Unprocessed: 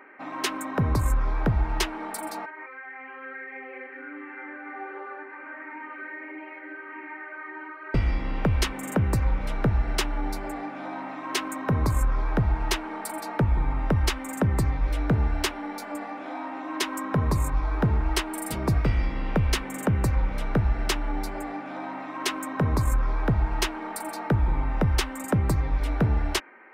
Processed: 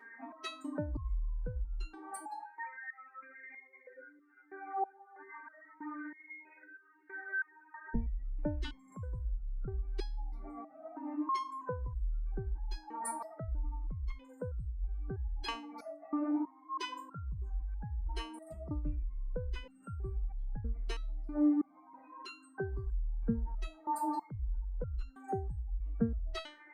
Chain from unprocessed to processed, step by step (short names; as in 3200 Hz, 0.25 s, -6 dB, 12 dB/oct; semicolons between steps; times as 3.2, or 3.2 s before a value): spectral contrast raised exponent 2.3; stepped resonator 3.1 Hz 230–1400 Hz; gain +10 dB